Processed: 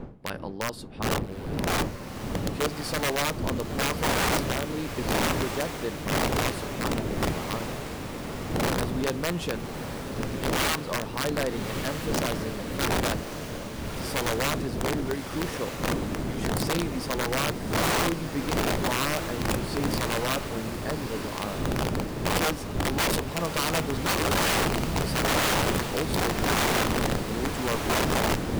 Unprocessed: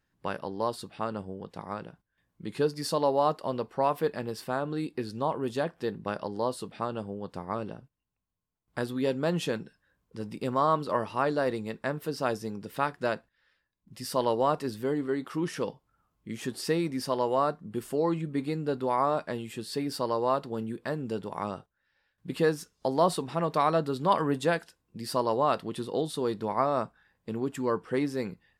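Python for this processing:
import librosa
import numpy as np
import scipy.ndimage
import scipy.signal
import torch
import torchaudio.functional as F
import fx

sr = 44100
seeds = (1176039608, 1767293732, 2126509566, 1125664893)

y = fx.dmg_wind(x, sr, seeds[0], corner_hz=270.0, level_db=-27.0)
y = (np.mod(10.0 ** (18.5 / 20.0) * y + 1.0, 2.0) - 1.0) / 10.0 ** (18.5 / 20.0)
y = fx.echo_diffused(y, sr, ms=1238, feedback_pct=56, wet_db=-8.0)
y = F.gain(torch.from_numpy(y), -1.0).numpy()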